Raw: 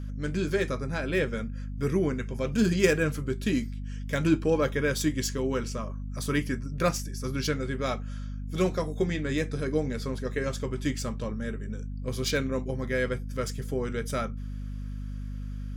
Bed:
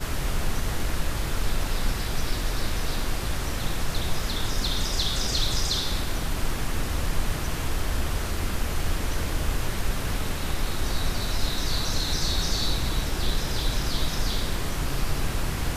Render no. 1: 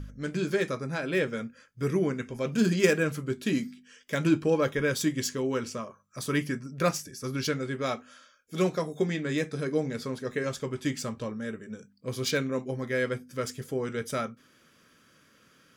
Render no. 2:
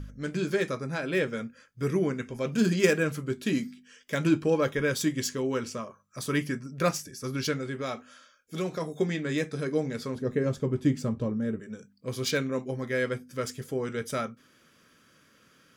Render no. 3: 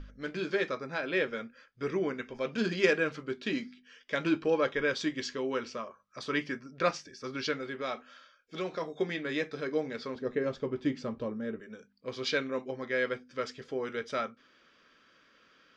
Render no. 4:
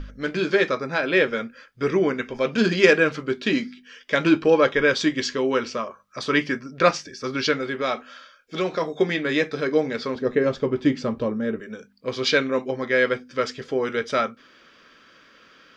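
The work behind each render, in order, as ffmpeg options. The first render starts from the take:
-af "bandreject=f=50:t=h:w=4,bandreject=f=100:t=h:w=4,bandreject=f=150:t=h:w=4,bandreject=f=200:t=h:w=4,bandreject=f=250:t=h:w=4"
-filter_complex "[0:a]asplit=3[a][b][c];[a]afade=t=out:st=7.58:d=0.02[d];[b]acompressor=threshold=-30dB:ratio=2:attack=3.2:release=140:knee=1:detection=peak,afade=t=in:st=7.58:d=0.02,afade=t=out:st=8.8:d=0.02[e];[c]afade=t=in:st=8.8:d=0.02[f];[d][e][f]amix=inputs=3:normalize=0,asettb=1/sr,asplit=3[g][h][i];[g]atrim=end=10.154[j];[h]atrim=start=10.15:end=11.6,asetpts=PTS-STARTPTS,afade=t=in:d=0.004:c=qsin,afade=t=out:st=1.446:d=0.004:c=qsin,tiltshelf=f=720:g=8[k];[i]atrim=start=11.596[l];[j][k]acrossfade=d=0.004:c1=hsin:c2=qsin[m];[m][l]acrossfade=d=0.004:c1=qsin:c2=hsin"
-af "lowpass=f=4.8k:w=0.5412,lowpass=f=4.8k:w=1.3066,equalizer=f=120:t=o:w=1.9:g=-14.5"
-af "volume=10.5dB,alimiter=limit=-2dB:level=0:latency=1"

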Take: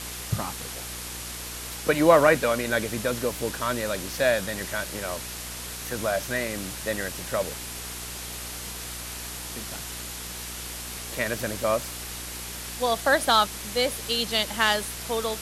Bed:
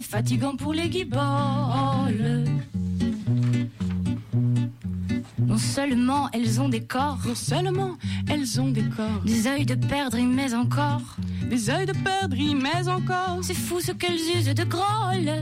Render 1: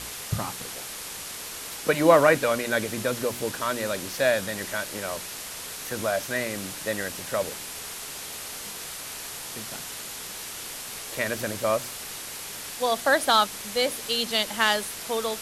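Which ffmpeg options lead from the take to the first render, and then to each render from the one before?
-af "bandreject=f=60:t=h:w=4,bandreject=f=120:t=h:w=4,bandreject=f=180:t=h:w=4,bandreject=f=240:t=h:w=4,bandreject=f=300:t=h:w=4,bandreject=f=360:t=h:w=4"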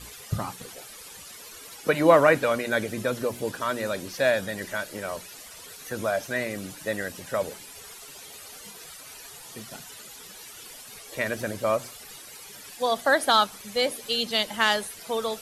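-af "afftdn=nr=13:nf=-38"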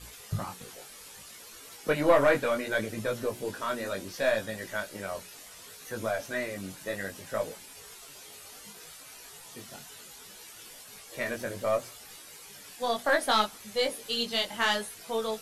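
-af "aeval=exprs='(tanh(2.82*val(0)+0.35)-tanh(0.35))/2.82':c=same,flanger=delay=18:depth=3.4:speed=0.66"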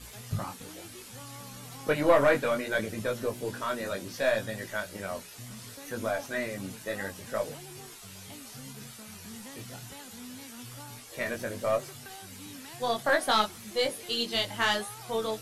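-filter_complex "[1:a]volume=-23.5dB[a];[0:a][a]amix=inputs=2:normalize=0"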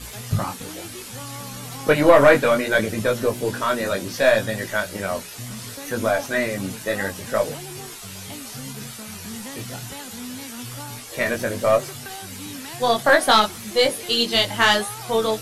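-af "volume=10dB,alimiter=limit=-2dB:level=0:latency=1"

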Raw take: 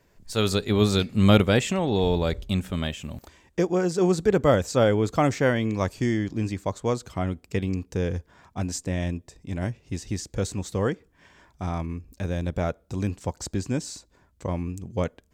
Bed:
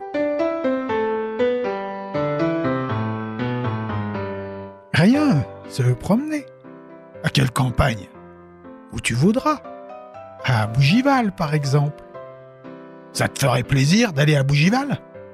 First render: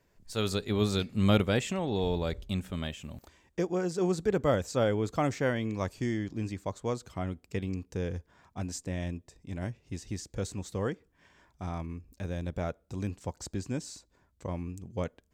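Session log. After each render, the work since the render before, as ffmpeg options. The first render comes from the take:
-af "volume=-7dB"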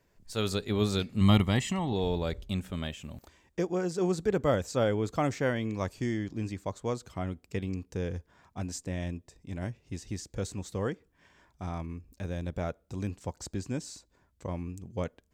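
-filter_complex "[0:a]asettb=1/sr,asplit=3[a][b][c];[a]atrim=end=1.214[d];[b]atrim=start=1.21:end=1.93,asetpts=PTS-STARTPTS,afade=t=in:d=0.004:c=qsin,afade=t=out:st=0.716:d=0.004:c=qsin,aecho=1:1:1:0.65,atrim=end_sample=31752[e];[c]atrim=start=1.926[f];[d][e]acrossfade=d=0.004:c1=hsin:c2=qsin[g];[g][f]acrossfade=d=0.004:c1=qsin:c2=hsin"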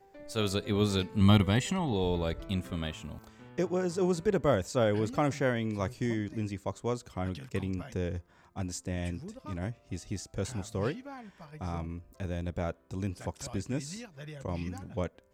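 -filter_complex "[1:a]volume=-28dB[a];[0:a][a]amix=inputs=2:normalize=0"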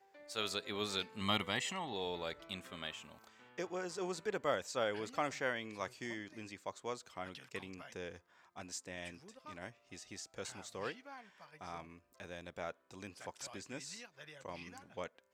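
-af "highpass=f=1.4k:p=1,highshelf=f=6.4k:g=-8.5"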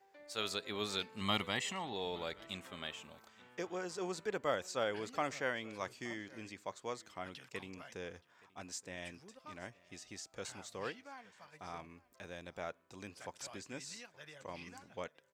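-af "aecho=1:1:873:0.0708"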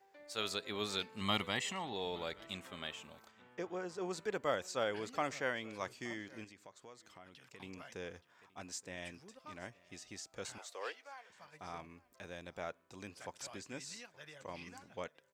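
-filter_complex "[0:a]asettb=1/sr,asplit=3[a][b][c];[a]atrim=end=3.314[d];[b]atrim=start=3.31:end=4.11,asetpts=PTS-STARTPTS,afade=t=in:d=0.004:c=qsin,afade=t=out:st=0.796:d=0.004:c=qsin,highshelf=f=2.6k:g=-8.5[e];[c]atrim=start=4.106[f];[d][e]acrossfade=d=0.004:c1=hsin:c2=qsin[g];[g][f]acrossfade=d=0.004:c1=qsin:c2=hsin,asettb=1/sr,asplit=3[h][i][j];[h]atrim=end=6.444[k];[i]atrim=start=6.44:end=7.6,asetpts=PTS-STARTPTS,afade=t=in:d=0.004:c=qsin,afade=t=out:st=1.156:d=0.004:c=qsin,acompressor=threshold=-57dB:ratio=2.5:attack=3.2:release=140:knee=1:detection=peak[l];[j]atrim=start=7.596[m];[k][l]acrossfade=d=0.004:c1=hsin:c2=qsin[n];[n][m]acrossfade=d=0.004:c1=qsin:c2=hsin,asettb=1/sr,asplit=3[o][p][q];[o]atrim=end=10.584[r];[p]atrim=start=10.58:end=11.3,asetpts=PTS-STARTPTS,afade=t=in:d=0.004:c=qsin,afade=t=out:st=0.716:d=0.004:c=qsin,highpass=f=440:w=0.5412,highpass=f=440:w=1.3066[s];[q]atrim=start=11.296[t];[r][s]acrossfade=d=0.004:c1=hsin:c2=qsin[u];[u][t]acrossfade=d=0.004:c1=qsin:c2=hsin"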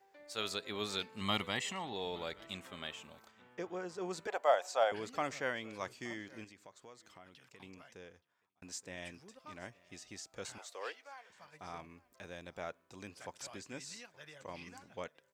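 -filter_complex "[0:a]asettb=1/sr,asplit=3[a][b][c];[a]atrim=end=4.274[d];[b]atrim=start=4.27:end=4.92,asetpts=PTS-STARTPTS,afade=t=in:d=0.004:c=qsin,afade=t=out:st=0.646:d=0.004:c=qsin,highpass=f=700:t=q:w=4.9[e];[c]atrim=start=4.916[f];[d][e]acrossfade=d=0.004:c1=hsin:c2=qsin[g];[g][f]acrossfade=d=0.004:c1=qsin:c2=hsin,asplit=2[h][i];[h]atrim=end=8.62,asetpts=PTS-STARTPTS,afade=t=out:st=7.17:d=1.45[j];[i]atrim=start=8.62,asetpts=PTS-STARTPTS,afade=t=in:d=0.004:c=hsin[k];[j][k]concat=n=2:v=0:a=1"

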